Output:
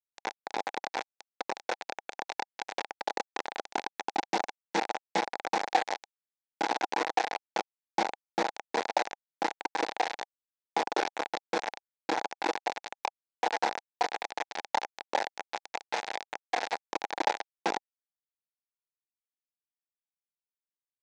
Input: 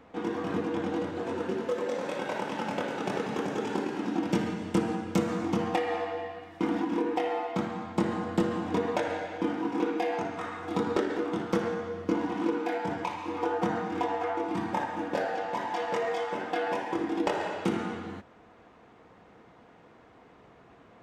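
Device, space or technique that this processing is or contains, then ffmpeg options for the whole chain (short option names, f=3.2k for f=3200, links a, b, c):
hand-held game console: -filter_complex "[0:a]asettb=1/sr,asplit=3[a][b][c];[a]atrim=end=12.794[d];[b]atrim=start=12.79:end=14.42,asetpts=PTS-STARTPTS,afade=t=in:d=0.004:c=qsin,afade=t=out:st=1.626:d=0.004:c=qsin,highpass=f=200:w=0.5412,highpass=f=200:w=1.3066[e];[c]atrim=start=14.416[f];[d][e]acrossfade=d=0.004:c1=hsin:c2=qsin[g];[g][f]acrossfade=d=0.004:c1=qsin:c2=hsin,acrusher=bits=3:mix=0:aa=0.000001,highpass=490,equalizer=f=810:t=q:w=4:g=10,equalizer=f=1.2k:t=q:w=4:g=-8,equalizer=f=3k:t=q:w=4:g=-7,equalizer=f=4.8k:t=q:w=4:g=-3,lowpass=f=5.7k:w=0.5412,lowpass=f=5.7k:w=1.3066"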